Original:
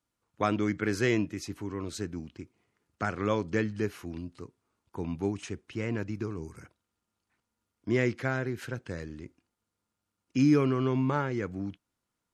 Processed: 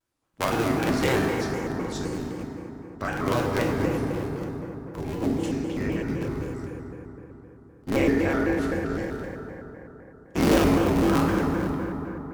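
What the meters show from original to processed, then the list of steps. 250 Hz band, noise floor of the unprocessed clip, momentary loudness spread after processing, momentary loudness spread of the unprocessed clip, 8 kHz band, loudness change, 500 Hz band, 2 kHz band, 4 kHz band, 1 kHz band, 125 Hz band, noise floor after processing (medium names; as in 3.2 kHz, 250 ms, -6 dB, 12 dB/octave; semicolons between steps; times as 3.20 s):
+5.5 dB, -85 dBFS, 17 LU, 17 LU, +7.0 dB, +5.0 dB, +6.0 dB, +5.0 dB, +8.0 dB, +7.0 dB, +4.0 dB, -50 dBFS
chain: cycle switcher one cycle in 3, inverted; FDN reverb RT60 3.9 s, high-frequency decay 0.4×, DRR -2.5 dB; vibrato with a chosen wave square 3.9 Hz, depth 160 cents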